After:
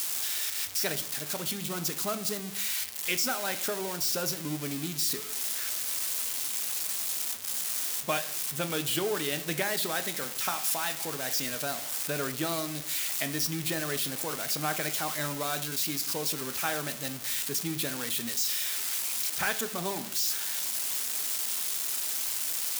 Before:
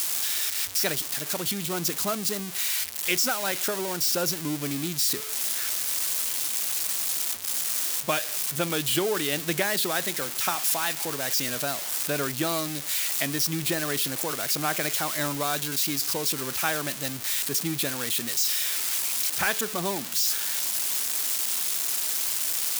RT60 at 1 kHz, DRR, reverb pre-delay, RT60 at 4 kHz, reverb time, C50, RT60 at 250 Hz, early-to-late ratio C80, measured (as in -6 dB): 0.60 s, 9.0 dB, 3 ms, 0.45 s, 0.65 s, 14.0 dB, 0.85 s, 17.5 dB